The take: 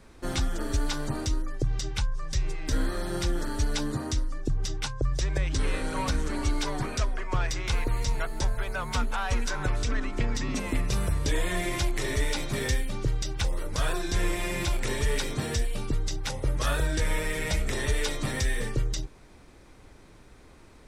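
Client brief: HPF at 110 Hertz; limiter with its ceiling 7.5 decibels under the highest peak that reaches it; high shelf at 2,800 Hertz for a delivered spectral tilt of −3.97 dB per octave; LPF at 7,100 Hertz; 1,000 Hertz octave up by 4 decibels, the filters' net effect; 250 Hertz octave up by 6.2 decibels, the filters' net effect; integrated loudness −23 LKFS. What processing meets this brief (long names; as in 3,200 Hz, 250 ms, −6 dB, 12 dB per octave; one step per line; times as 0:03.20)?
high-pass filter 110 Hz
low-pass filter 7,100 Hz
parametric band 250 Hz +8 dB
parametric band 1,000 Hz +3.5 dB
high-shelf EQ 2,800 Hz +7 dB
level +7 dB
brickwall limiter −12.5 dBFS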